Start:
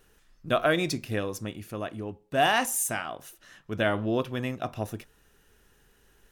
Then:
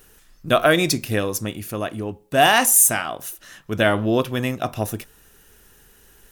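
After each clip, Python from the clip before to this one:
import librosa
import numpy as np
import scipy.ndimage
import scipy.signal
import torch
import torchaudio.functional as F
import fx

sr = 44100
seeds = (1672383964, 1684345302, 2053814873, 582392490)

y = fx.high_shelf(x, sr, hz=7400.0, db=11.0)
y = y * librosa.db_to_amplitude(7.5)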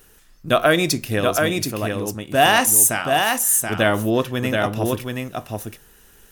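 y = x + 10.0 ** (-4.0 / 20.0) * np.pad(x, (int(728 * sr / 1000.0), 0))[:len(x)]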